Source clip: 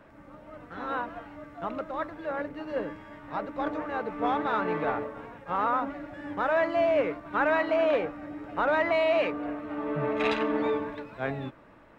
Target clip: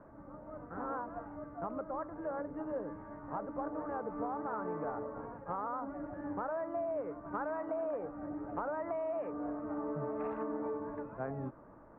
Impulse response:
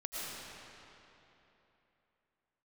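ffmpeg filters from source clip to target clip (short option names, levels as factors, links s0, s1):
-af "lowpass=f=1300:w=0.5412,lowpass=f=1300:w=1.3066,acompressor=threshold=0.02:ratio=6,volume=0.891"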